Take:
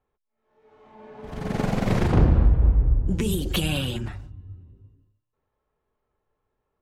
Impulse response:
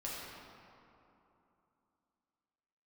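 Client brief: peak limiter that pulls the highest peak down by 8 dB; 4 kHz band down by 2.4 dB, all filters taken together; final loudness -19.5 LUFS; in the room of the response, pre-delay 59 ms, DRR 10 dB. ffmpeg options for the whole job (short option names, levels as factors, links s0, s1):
-filter_complex "[0:a]equalizer=f=4000:t=o:g=-3.5,alimiter=limit=0.141:level=0:latency=1,asplit=2[s0][s1];[1:a]atrim=start_sample=2205,adelay=59[s2];[s1][s2]afir=irnorm=-1:irlink=0,volume=0.266[s3];[s0][s3]amix=inputs=2:normalize=0,volume=2.51"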